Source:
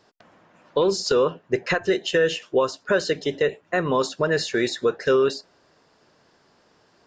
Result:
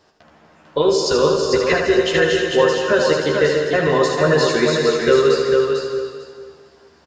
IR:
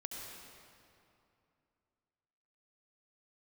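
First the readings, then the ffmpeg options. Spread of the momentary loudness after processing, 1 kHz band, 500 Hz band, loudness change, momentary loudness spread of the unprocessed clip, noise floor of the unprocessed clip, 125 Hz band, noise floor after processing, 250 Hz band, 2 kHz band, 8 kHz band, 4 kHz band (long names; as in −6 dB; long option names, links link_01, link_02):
6 LU, +6.0 dB, +7.0 dB, +6.5 dB, 5 LU, −62 dBFS, +8.0 dB, −52 dBFS, +6.5 dB, +6.5 dB, +6.0 dB, +6.5 dB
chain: -filter_complex "[0:a]equalizer=frequency=75:width_type=o:width=0.38:gain=12.5,asplit=2[link_01][link_02];[link_02]adelay=13,volume=-4dB[link_03];[link_01][link_03]amix=inputs=2:normalize=0,aecho=1:1:447|894|1341:0.596|0.119|0.0238,asplit=2[link_04][link_05];[1:a]atrim=start_sample=2205,afade=type=out:start_time=0.37:duration=0.01,atrim=end_sample=16758,adelay=77[link_06];[link_05][link_06]afir=irnorm=-1:irlink=0,volume=-0.5dB[link_07];[link_04][link_07]amix=inputs=2:normalize=0,volume=1.5dB"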